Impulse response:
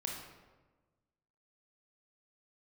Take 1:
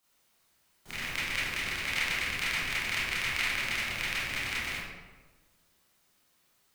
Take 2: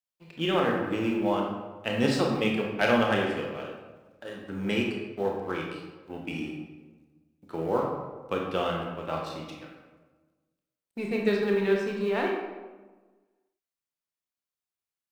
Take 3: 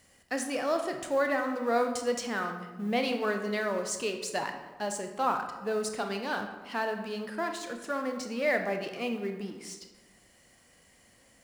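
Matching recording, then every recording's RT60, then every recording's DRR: 2; 1.3 s, 1.3 s, 1.3 s; -10.5 dB, -0.5 dB, 5.0 dB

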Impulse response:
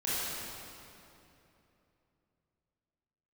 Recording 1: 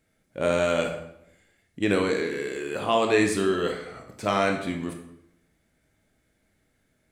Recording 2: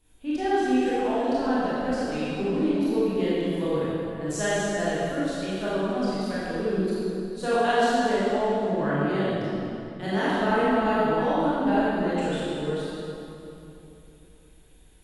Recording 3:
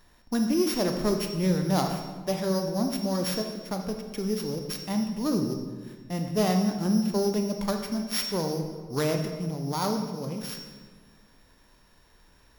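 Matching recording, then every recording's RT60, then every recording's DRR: 2; 0.75 s, 3.0 s, 1.5 s; 2.5 dB, -10.5 dB, 4.0 dB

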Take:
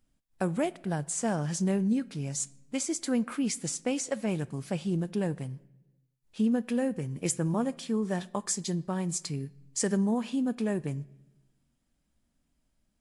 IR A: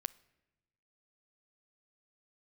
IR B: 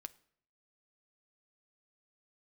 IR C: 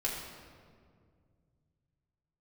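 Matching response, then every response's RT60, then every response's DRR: A; 1.0 s, 0.65 s, 2.1 s; 17.5 dB, 12.0 dB, -5.5 dB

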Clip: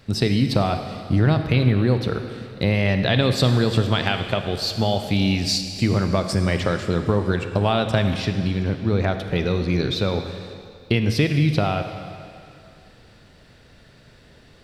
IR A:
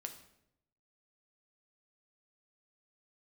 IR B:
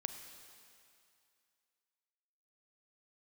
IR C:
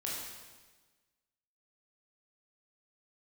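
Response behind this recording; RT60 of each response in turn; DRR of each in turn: B; 0.80 s, 2.4 s, 1.3 s; 5.0 dB, 7.0 dB, -5.0 dB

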